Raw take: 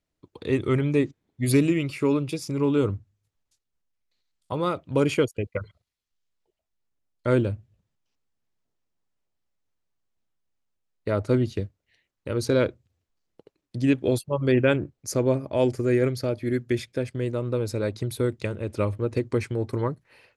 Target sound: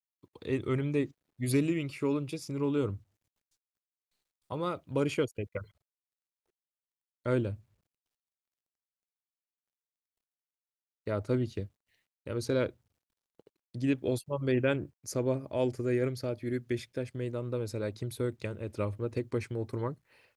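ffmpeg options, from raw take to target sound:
-af "acrusher=bits=11:mix=0:aa=0.000001,volume=0.422"

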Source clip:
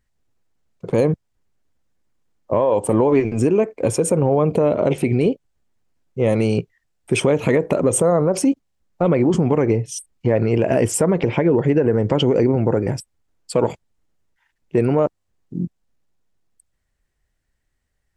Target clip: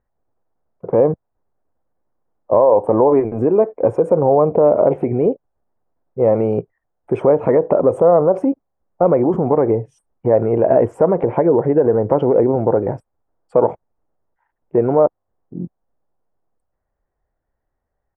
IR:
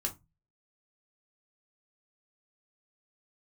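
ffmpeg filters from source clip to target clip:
-af "firequalizer=gain_entry='entry(170,0);entry(510,9);entry(760,11);entry(2700,-17);entry(4300,-28)':delay=0.05:min_phase=1,volume=0.668"

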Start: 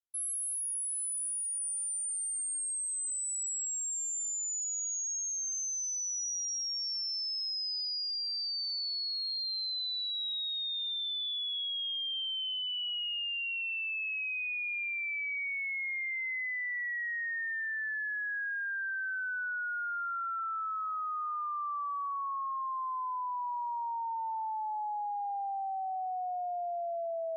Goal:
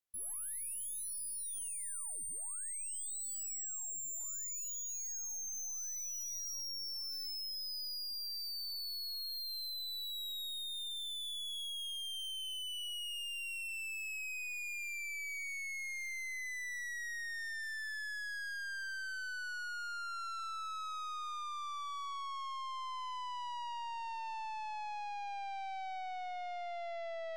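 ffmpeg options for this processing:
-af "aeval=exprs='(tanh(141*val(0)+0.4)-tanh(0.4))/141':c=same,volume=1.26"

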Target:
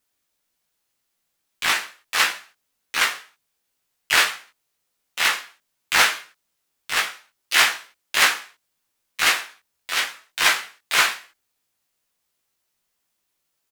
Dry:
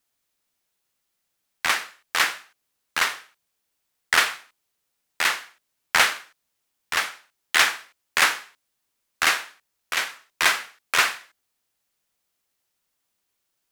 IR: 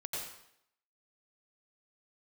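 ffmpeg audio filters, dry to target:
-filter_complex "[0:a]asplit=2[s0][s1];[s1]adelay=18,volume=0.668[s2];[s0][s2]amix=inputs=2:normalize=0,asplit=2[s3][s4];[s4]asetrate=66075,aresample=44100,atempo=0.66742,volume=0.631[s5];[s3][s5]amix=inputs=2:normalize=0,volume=0.891"

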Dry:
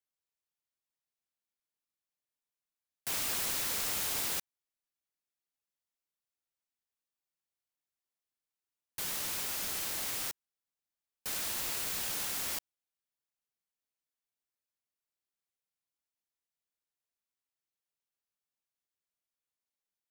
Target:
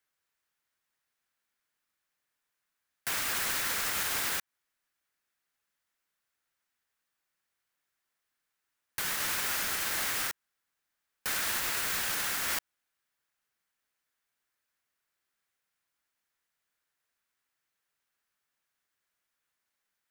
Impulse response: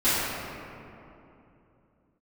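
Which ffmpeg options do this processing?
-af "equalizer=f=1600:w=1.2:g=9.5,alimiter=level_in=1.68:limit=0.0631:level=0:latency=1:release=157,volume=0.596,volume=2.24"

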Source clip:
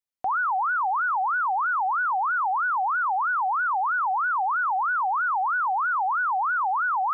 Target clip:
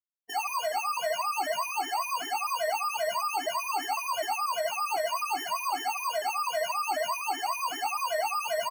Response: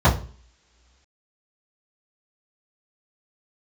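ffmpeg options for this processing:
-filter_complex "[0:a]lowpass=1000,asetrate=36162,aresample=44100,acrusher=samples=12:mix=1:aa=0.000001,asplit=2[s0][s1];[s1]adelay=90,highpass=300,lowpass=3400,asoftclip=type=hard:threshold=0.0251,volume=0.355[s2];[s0][s2]amix=inputs=2:normalize=0,aeval=exprs='0.0501*(abs(mod(val(0)/0.0501+3,4)-2)-1)':c=same,afftdn=nr=35:nf=-43,highpass=160,asplit=2[s3][s4];[s4]adelay=19,volume=0.531[s5];[s3][s5]amix=inputs=2:normalize=0,afftfilt=real='re*gt(sin(2*PI*2*pts/sr)*(1-2*mod(floor(b*sr/1024/230),2)),0)':imag='im*gt(sin(2*PI*2*pts/sr)*(1-2*mod(floor(b*sr/1024/230),2)),0)':win_size=1024:overlap=0.75,volume=1.26"

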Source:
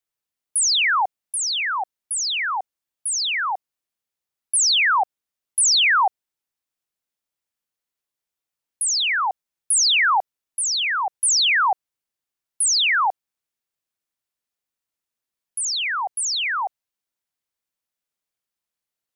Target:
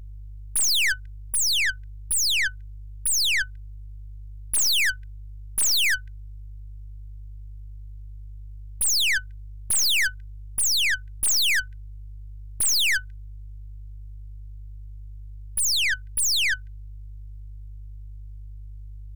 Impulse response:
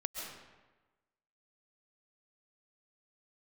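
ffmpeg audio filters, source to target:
-af "aeval=exprs='val(0)+0.00891*(sin(2*PI*50*n/s)+sin(2*PI*2*50*n/s)/2+sin(2*PI*3*50*n/s)/3+sin(2*PI*4*50*n/s)/4+sin(2*PI*5*50*n/s)/5)':c=same,afftfilt=real='re*(1-between(b*sr/4096,100,1500))':imag='im*(1-between(b*sr/4096,100,1500))':win_size=4096:overlap=0.75,aeval=exprs='(tanh(25.1*val(0)+0.6)-tanh(0.6))/25.1':c=same,volume=2.37"

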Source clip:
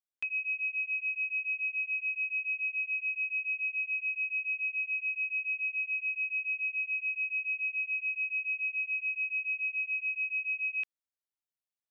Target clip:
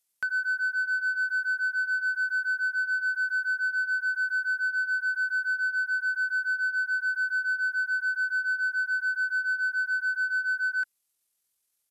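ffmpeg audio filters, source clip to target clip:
-filter_complex "[0:a]asetrate=26222,aresample=44100,atempo=1.68179,aemphasis=mode=production:type=75fm,asplit=2[s0][s1];[s1]asoftclip=type=tanh:threshold=0.0133,volume=0.668[s2];[s0][s2]amix=inputs=2:normalize=0,volume=1.33"

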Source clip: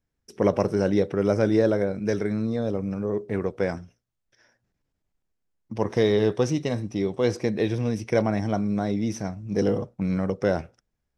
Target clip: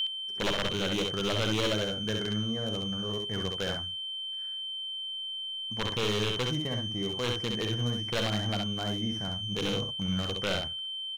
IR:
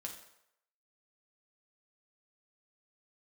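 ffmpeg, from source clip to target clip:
-af "highshelf=f=2300:t=q:w=1.5:g=-14,aeval=exprs='val(0)+0.0562*sin(2*PI*3100*n/s)':c=same,aeval=exprs='0.2*(abs(mod(val(0)/0.2+3,4)-2)-1)':c=same,equalizer=f=400:t=o:w=2.9:g=-11,asoftclip=type=tanh:threshold=0.141,aecho=1:1:53|66:0.178|0.596"

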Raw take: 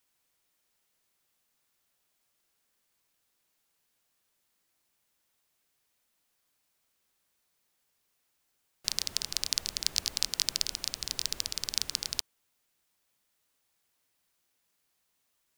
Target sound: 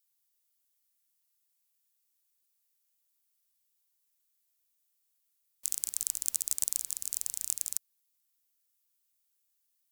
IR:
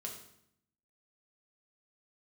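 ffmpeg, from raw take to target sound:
-af "crystalizer=i=9:c=0,asetrate=69237,aresample=44100,volume=0.133"

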